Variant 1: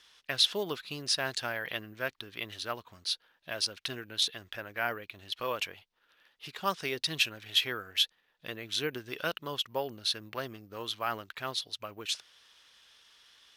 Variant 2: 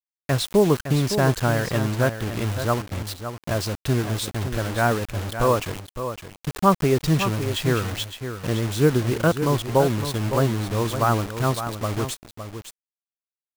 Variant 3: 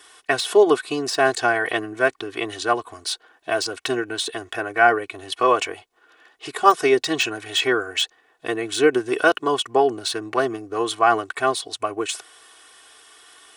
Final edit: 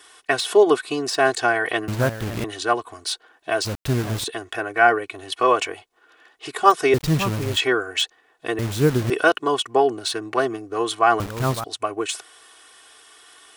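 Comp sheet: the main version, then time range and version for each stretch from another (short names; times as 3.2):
3
1.88–2.44 from 2
3.65–4.24 from 2
6.94–7.57 from 2
8.59–9.1 from 2
11.2–11.64 from 2
not used: 1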